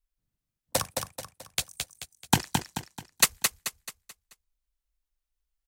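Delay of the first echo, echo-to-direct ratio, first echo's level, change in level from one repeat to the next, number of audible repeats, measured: 217 ms, -4.0 dB, -5.0 dB, -7.5 dB, 4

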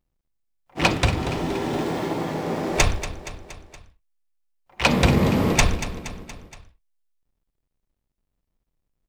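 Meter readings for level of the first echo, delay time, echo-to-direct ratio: -13.0 dB, 235 ms, -11.0 dB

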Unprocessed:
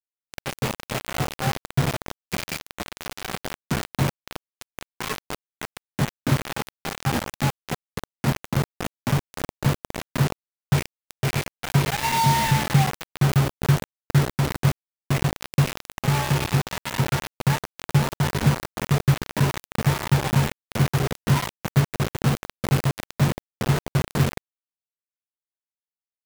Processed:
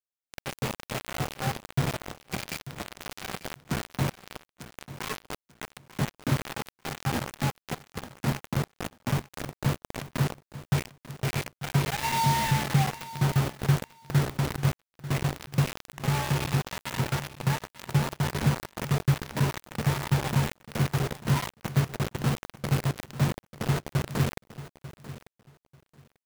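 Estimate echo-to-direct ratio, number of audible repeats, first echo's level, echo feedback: -15.5 dB, 2, -15.5 dB, 19%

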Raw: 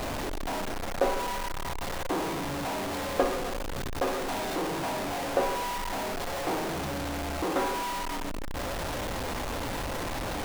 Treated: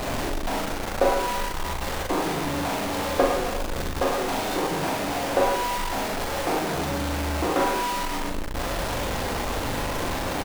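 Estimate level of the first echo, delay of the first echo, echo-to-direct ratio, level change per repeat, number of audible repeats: -4.0 dB, 41 ms, -2.5 dB, no regular repeats, 2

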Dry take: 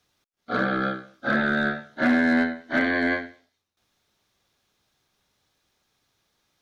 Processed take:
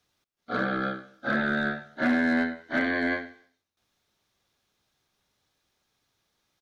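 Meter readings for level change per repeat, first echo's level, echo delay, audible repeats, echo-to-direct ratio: -6.0 dB, -23.0 dB, 96 ms, 2, -22.0 dB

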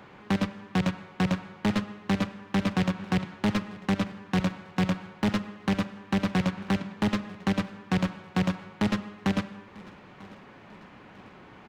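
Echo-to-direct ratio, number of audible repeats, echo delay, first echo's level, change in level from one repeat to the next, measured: -21.0 dB, 2, 945 ms, -22.0 dB, -6.5 dB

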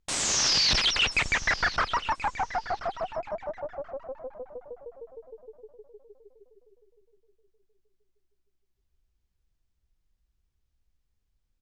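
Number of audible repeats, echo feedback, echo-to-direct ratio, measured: 2, 22%, -15.0 dB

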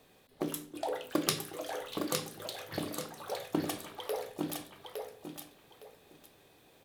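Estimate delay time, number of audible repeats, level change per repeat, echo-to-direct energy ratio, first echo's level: 861 ms, 2, -12.5 dB, -5.0 dB, -5.0 dB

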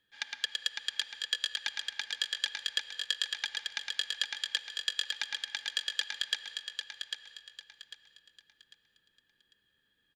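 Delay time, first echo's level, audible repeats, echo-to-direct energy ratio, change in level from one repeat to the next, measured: 798 ms, -6.0 dB, 3, -5.5 dB, -10.0 dB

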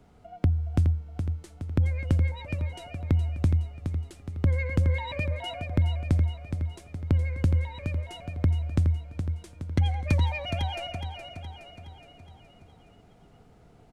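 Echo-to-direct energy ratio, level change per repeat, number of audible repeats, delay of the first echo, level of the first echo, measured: -6.0 dB, -5.5 dB, 5, 418 ms, -7.5 dB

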